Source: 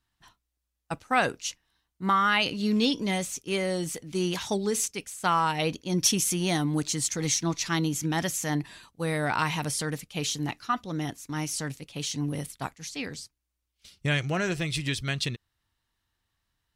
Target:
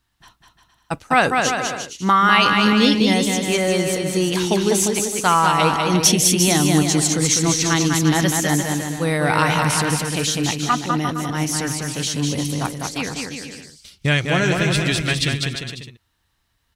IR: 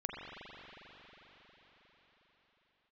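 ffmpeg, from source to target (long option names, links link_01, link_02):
-af "aecho=1:1:200|350|462.5|546.9|610.2:0.631|0.398|0.251|0.158|0.1,volume=8dB"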